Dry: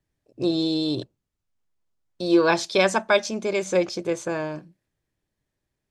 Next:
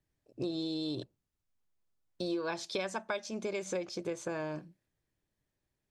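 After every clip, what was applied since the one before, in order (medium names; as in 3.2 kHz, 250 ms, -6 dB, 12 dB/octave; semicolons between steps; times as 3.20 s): compression 6:1, threshold -29 dBFS, peak gain reduction 15 dB; trim -4 dB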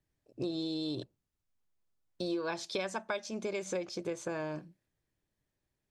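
no audible change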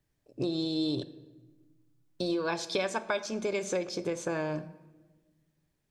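reverberation RT60 1.3 s, pre-delay 7 ms, DRR 12.5 dB; trim +4.5 dB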